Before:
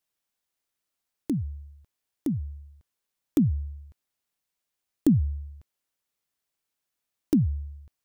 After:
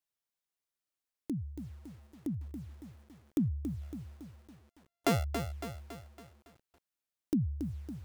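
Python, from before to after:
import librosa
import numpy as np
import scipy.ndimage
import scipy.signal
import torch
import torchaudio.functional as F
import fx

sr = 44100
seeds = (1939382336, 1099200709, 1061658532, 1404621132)

y = fx.sample_sort(x, sr, block=64, at=(3.81, 5.23), fade=0.02)
y = fx.echo_crushed(y, sr, ms=279, feedback_pct=55, bits=8, wet_db=-7.5)
y = y * 10.0 ** (-8.5 / 20.0)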